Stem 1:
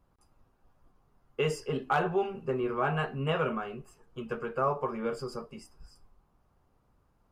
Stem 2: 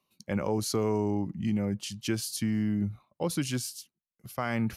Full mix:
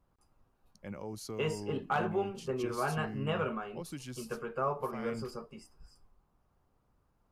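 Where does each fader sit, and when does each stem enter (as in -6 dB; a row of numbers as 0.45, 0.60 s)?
-4.0, -13.0 dB; 0.00, 0.55 s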